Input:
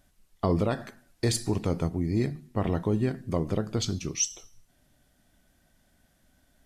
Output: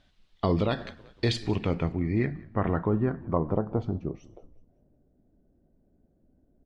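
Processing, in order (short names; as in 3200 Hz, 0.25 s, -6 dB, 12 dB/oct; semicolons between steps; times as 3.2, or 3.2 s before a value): frequency-shifting echo 0.187 s, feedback 50%, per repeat -43 Hz, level -21.5 dB; low-pass sweep 3700 Hz -> 410 Hz, 1.12–5.08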